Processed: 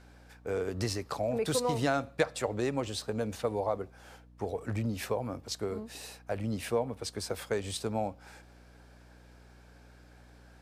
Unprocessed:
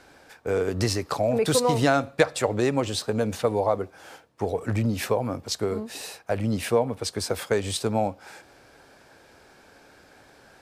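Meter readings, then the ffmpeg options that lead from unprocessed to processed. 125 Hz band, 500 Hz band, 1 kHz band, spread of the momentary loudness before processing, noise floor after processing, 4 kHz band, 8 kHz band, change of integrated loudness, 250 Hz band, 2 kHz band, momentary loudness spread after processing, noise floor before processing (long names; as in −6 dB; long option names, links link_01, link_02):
−8.0 dB, −8.0 dB, −8.0 dB, 9 LU, −56 dBFS, −8.0 dB, −8.0 dB, −8.0 dB, −8.0 dB, −8.0 dB, 10 LU, −55 dBFS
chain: -af "aeval=exprs='val(0)+0.00447*(sin(2*PI*60*n/s)+sin(2*PI*2*60*n/s)/2+sin(2*PI*3*60*n/s)/3+sin(2*PI*4*60*n/s)/4+sin(2*PI*5*60*n/s)/5)':channel_layout=same,volume=-8dB"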